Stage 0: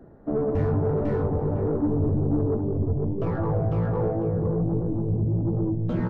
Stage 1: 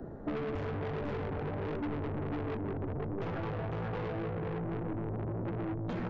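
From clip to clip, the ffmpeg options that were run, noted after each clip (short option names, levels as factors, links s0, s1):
-filter_complex "[0:a]aresample=16000,asoftclip=type=tanh:threshold=0.0335,aresample=44100,acrossover=split=260|1800[s0][s1][s2];[s0]acompressor=threshold=0.00562:ratio=4[s3];[s1]acompressor=threshold=0.00631:ratio=4[s4];[s2]acompressor=threshold=0.002:ratio=4[s5];[s3][s4][s5]amix=inputs=3:normalize=0,volume=1.88"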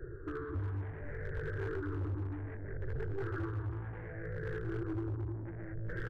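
-af "afftfilt=real='re*pow(10,15/40*sin(2*PI*(0.56*log(max(b,1)*sr/1024/100)/log(2)-(-0.66)*(pts-256)/sr)))':imag='im*pow(10,15/40*sin(2*PI*(0.56*log(max(b,1)*sr/1024/100)/log(2)-(-0.66)*(pts-256)/sr)))':win_size=1024:overlap=0.75,firequalizer=gain_entry='entry(100,0);entry(210,-26);entry(340,-3);entry(720,-23);entry(1600,2);entry(2600,-27)':delay=0.05:min_phase=1,asoftclip=type=hard:threshold=0.0224,volume=1.12"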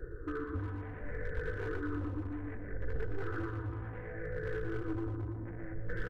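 -filter_complex "[0:a]bandreject=f=810:w=19,aecho=1:1:4:0.51,asplit=2[s0][s1];[s1]aecho=0:1:119:0.355[s2];[s0][s2]amix=inputs=2:normalize=0,volume=1.12"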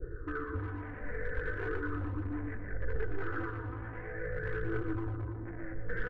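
-af "adynamicequalizer=threshold=0.00126:dfrequency=1800:dqfactor=0.71:tfrequency=1800:tqfactor=0.71:attack=5:release=100:ratio=0.375:range=3:mode=boostabove:tftype=bell,lowpass=f=2400:p=1,aphaser=in_gain=1:out_gain=1:delay=4.5:decay=0.29:speed=0.42:type=triangular"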